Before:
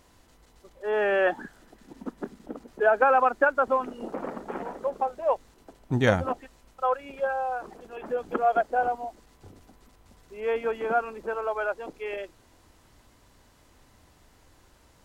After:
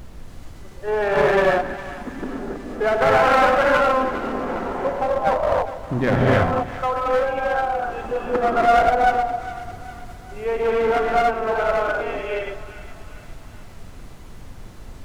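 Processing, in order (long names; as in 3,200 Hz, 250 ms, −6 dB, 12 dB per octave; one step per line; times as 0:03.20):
treble cut that deepens with the level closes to 2,100 Hz, closed at −24 dBFS
in parallel at −1.5 dB: output level in coarse steps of 14 dB
on the sum: reverb whose tail is shaped and stops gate 320 ms rising, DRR −5.5 dB
asymmetric clip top −19.5 dBFS
on a send: echo with a time of its own for lows and highs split 750 Hz, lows 160 ms, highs 408 ms, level −13.5 dB
on the sum: background noise brown −37 dBFS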